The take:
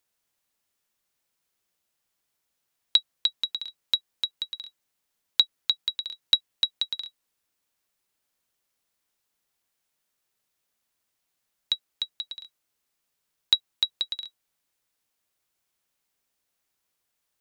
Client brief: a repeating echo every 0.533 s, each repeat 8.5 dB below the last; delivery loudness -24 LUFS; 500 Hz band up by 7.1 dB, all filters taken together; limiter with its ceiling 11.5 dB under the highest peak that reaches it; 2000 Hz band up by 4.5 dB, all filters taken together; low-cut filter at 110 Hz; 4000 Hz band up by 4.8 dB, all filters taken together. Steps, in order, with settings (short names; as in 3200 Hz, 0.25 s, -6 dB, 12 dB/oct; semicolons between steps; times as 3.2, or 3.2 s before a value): HPF 110 Hz; bell 500 Hz +8.5 dB; bell 2000 Hz +4 dB; bell 4000 Hz +4 dB; limiter -12 dBFS; feedback echo 0.533 s, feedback 38%, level -8.5 dB; gain +4.5 dB